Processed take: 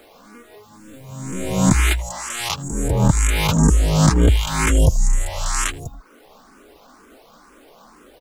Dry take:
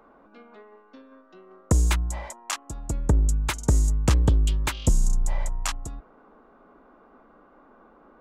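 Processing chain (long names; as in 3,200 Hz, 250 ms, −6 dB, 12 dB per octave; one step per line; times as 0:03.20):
peak hold with a rise ahead of every peak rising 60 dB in 1.50 s
far-end echo of a speakerphone 80 ms, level −10 dB
bit reduction 9 bits
reverb reduction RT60 0.54 s
frequency shifter mixed with the dry sound +2.1 Hz
level +6.5 dB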